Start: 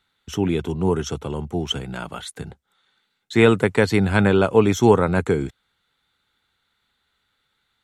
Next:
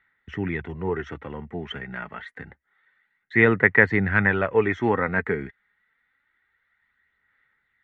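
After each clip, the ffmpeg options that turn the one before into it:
ffmpeg -i in.wav -af "aphaser=in_gain=1:out_gain=1:delay=4.9:decay=0.35:speed=0.27:type=sinusoidal,lowpass=frequency=1900:width_type=q:width=11,volume=-8dB" out.wav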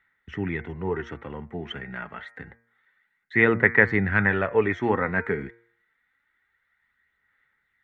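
ffmpeg -i in.wav -af "bandreject=frequency=116.2:width_type=h:width=4,bandreject=frequency=232.4:width_type=h:width=4,bandreject=frequency=348.6:width_type=h:width=4,bandreject=frequency=464.8:width_type=h:width=4,bandreject=frequency=581:width_type=h:width=4,bandreject=frequency=697.2:width_type=h:width=4,bandreject=frequency=813.4:width_type=h:width=4,bandreject=frequency=929.6:width_type=h:width=4,bandreject=frequency=1045.8:width_type=h:width=4,bandreject=frequency=1162:width_type=h:width=4,bandreject=frequency=1278.2:width_type=h:width=4,bandreject=frequency=1394.4:width_type=h:width=4,bandreject=frequency=1510.6:width_type=h:width=4,bandreject=frequency=1626.8:width_type=h:width=4,bandreject=frequency=1743:width_type=h:width=4,bandreject=frequency=1859.2:width_type=h:width=4,bandreject=frequency=1975.4:width_type=h:width=4,bandreject=frequency=2091.6:width_type=h:width=4,bandreject=frequency=2207.8:width_type=h:width=4,bandreject=frequency=2324:width_type=h:width=4,bandreject=frequency=2440.2:width_type=h:width=4,volume=-1dB" out.wav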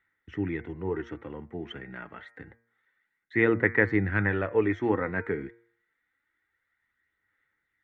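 ffmpeg -i in.wav -af "equalizer=frequency=100:width_type=o:width=0.33:gain=6,equalizer=frequency=315:width_type=o:width=0.33:gain=11,equalizer=frequency=500:width_type=o:width=0.33:gain=4,volume=-6.5dB" out.wav

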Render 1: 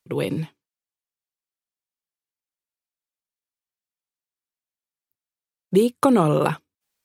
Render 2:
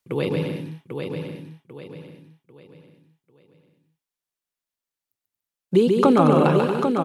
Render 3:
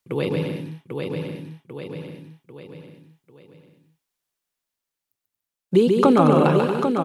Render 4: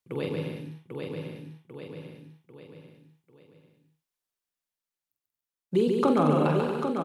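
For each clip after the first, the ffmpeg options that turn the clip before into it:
ffmpeg -i in.wav -filter_complex "[0:a]asplit=2[link_01][link_02];[link_02]aecho=0:1:140|231|290.2|328.6|353.6:0.631|0.398|0.251|0.158|0.1[link_03];[link_01][link_03]amix=inputs=2:normalize=0,acrossover=split=6600[link_04][link_05];[link_05]acompressor=threshold=-57dB:ratio=4:attack=1:release=60[link_06];[link_04][link_06]amix=inputs=2:normalize=0,asplit=2[link_07][link_08];[link_08]aecho=0:1:794|1588|2382|3176:0.501|0.175|0.0614|0.0215[link_09];[link_07][link_09]amix=inputs=2:normalize=0" out.wav
ffmpeg -i in.wav -af "dynaudnorm=framelen=700:gausssize=5:maxgain=8dB" out.wav
ffmpeg -i in.wav -filter_complex "[0:a]asplit=2[link_01][link_02];[link_02]adelay=46,volume=-7dB[link_03];[link_01][link_03]amix=inputs=2:normalize=0,volume=-8dB" out.wav

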